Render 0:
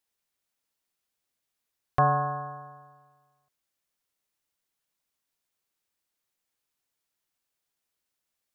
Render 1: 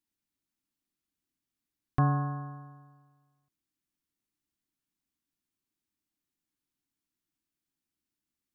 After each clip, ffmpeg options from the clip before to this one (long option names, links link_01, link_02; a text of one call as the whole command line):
ffmpeg -i in.wav -af "lowshelf=frequency=390:width_type=q:width=3:gain=8.5,volume=-7dB" out.wav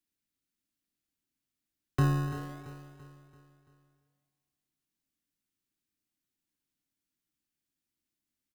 ffmpeg -i in.wav -filter_complex "[0:a]acrossover=split=190|330|1000[link_01][link_02][link_03][link_04];[link_03]acrusher=samples=31:mix=1:aa=0.000001:lfo=1:lforange=18.6:lforate=0.58[link_05];[link_01][link_02][link_05][link_04]amix=inputs=4:normalize=0,aecho=1:1:337|674|1011|1348|1685:0.237|0.111|0.0524|0.0246|0.0116" out.wav